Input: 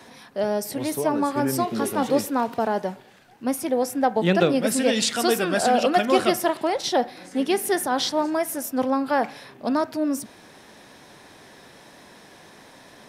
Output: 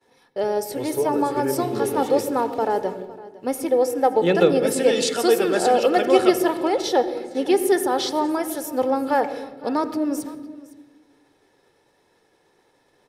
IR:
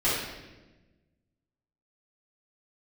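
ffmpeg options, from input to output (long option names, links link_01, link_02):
-filter_complex "[0:a]agate=range=-33dB:threshold=-37dB:ratio=3:detection=peak,equalizer=frequency=460:width_type=o:width=1.8:gain=5,aecho=1:1:2.3:0.48,aecho=1:1:509:0.106,asplit=2[link_01][link_02];[1:a]atrim=start_sample=2205,lowshelf=frequency=450:gain=12,adelay=80[link_03];[link_02][link_03]afir=irnorm=-1:irlink=0,volume=-29dB[link_04];[link_01][link_04]amix=inputs=2:normalize=0,volume=-2.5dB"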